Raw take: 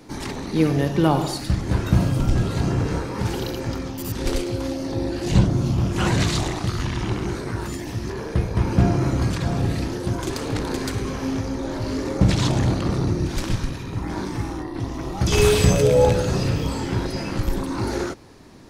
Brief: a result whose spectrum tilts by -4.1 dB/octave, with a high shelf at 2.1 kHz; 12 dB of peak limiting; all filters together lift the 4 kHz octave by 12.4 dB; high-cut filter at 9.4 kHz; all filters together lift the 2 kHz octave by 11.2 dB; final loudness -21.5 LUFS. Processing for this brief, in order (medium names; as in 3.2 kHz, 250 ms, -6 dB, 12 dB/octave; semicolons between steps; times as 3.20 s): low-pass 9.4 kHz; peaking EQ 2 kHz +8 dB; treble shelf 2.1 kHz +7.5 dB; peaking EQ 4 kHz +6 dB; trim +1 dB; peak limiter -11 dBFS